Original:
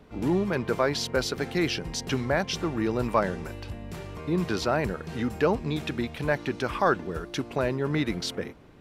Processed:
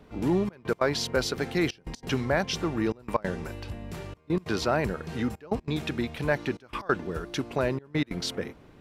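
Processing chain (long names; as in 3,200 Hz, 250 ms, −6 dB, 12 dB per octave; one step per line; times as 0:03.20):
gate pattern "xxxxxx..x.xxxxx" 185 BPM −24 dB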